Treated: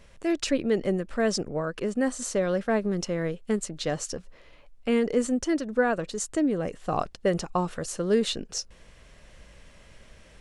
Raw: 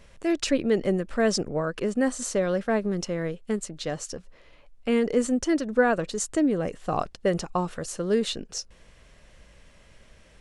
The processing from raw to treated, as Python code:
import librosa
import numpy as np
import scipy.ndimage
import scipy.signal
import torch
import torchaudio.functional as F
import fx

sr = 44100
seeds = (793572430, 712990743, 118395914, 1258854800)

y = fx.rider(x, sr, range_db=4, speed_s=2.0)
y = F.gain(torch.from_numpy(y), -1.5).numpy()